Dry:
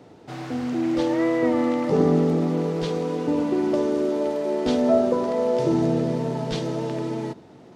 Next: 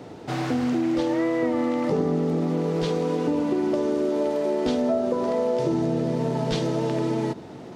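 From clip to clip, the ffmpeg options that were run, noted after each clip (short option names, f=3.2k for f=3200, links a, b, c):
-af "acompressor=threshold=-29dB:ratio=5,volume=7.5dB"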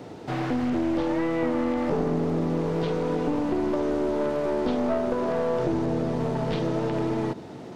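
-filter_complex "[0:a]aeval=exprs='clip(val(0),-1,0.0501)':c=same,acrossover=split=3400[a][b];[b]acompressor=threshold=-52dB:ratio=4:attack=1:release=60[c];[a][c]amix=inputs=2:normalize=0"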